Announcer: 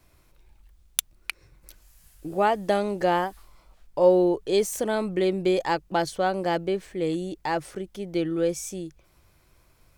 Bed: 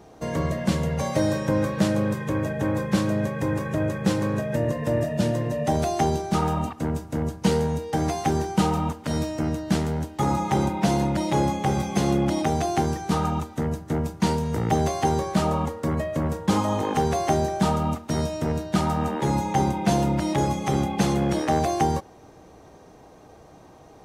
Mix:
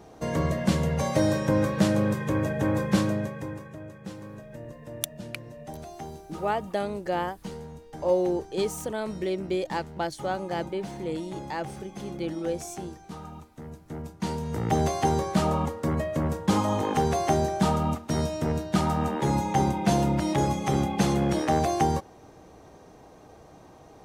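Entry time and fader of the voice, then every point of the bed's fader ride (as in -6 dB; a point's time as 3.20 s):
4.05 s, -5.5 dB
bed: 3.01 s -0.5 dB
3.80 s -17 dB
13.52 s -17 dB
14.80 s -1.5 dB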